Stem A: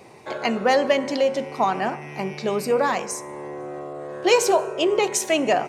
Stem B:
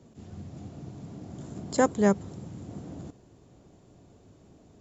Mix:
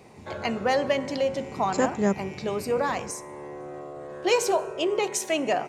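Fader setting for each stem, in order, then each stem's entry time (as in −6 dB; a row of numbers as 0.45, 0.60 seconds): −5.0, −1.5 decibels; 0.00, 0.00 seconds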